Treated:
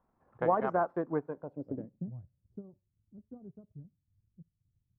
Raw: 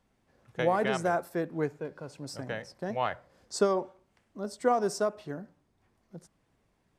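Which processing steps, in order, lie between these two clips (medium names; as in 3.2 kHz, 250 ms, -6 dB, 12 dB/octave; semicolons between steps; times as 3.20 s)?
low-pass sweep 1.1 kHz -> 110 Hz, 1.86–3.07 s; dynamic bell 270 Hz, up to +5 dB, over -51 dBFS, Q 3.2; transient shaper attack +2 dB, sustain -6 dB; tempo 1.4×; trim -4.5 dB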